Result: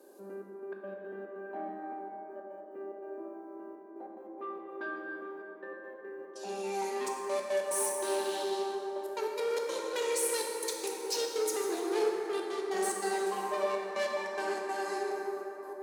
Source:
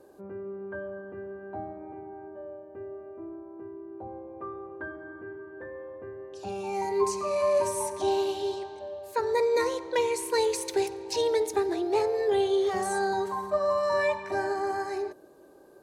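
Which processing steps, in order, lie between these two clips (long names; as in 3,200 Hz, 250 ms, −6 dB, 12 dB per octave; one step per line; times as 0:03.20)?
soft clipping −28.5 dBFS, distortion −9 dB
high-shelf EQ 3,800 Hz +10.5 dB
echo with a time of its own for lows and highs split 1,600 Hz, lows 784 ms, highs 145 ms, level −13.5 dB
gate pattern "xxxx..x.x.xx.xxx" 144 BPM −24 dB
elliptic high-pass filter 200 Hz, stop band 40 dB
dense smooth reverb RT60 3.9 s, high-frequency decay 0.4×, DRR −1 dB
level −3.5 dB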